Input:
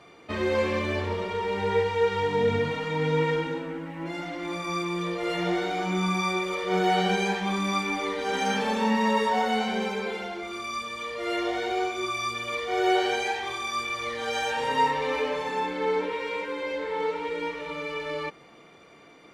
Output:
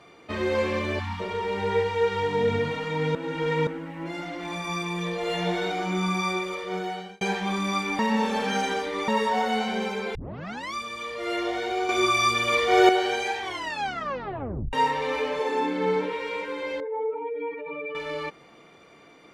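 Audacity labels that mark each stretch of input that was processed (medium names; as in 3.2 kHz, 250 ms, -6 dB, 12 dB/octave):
0.990000	1.200000	spectral selection erased 280–730 Hz
3.150000	3.670000	reverse
4.400000	5.720000	comb 4.6 ms
6.320000	7.210000	fade out
7.990000	9.080000	reverse
10.150000	10.150000	tape start 0.59 s
11.890000	12.890000	gain +8 dB
13.420000	13.420000	tape stop 1.31 s
15.390000	16.120000	resonant high-pass 410 Hz -> 120 Hz, resonance Q 3.6
16.800000	17.950000	spectral contrast enhancement exponent 2.2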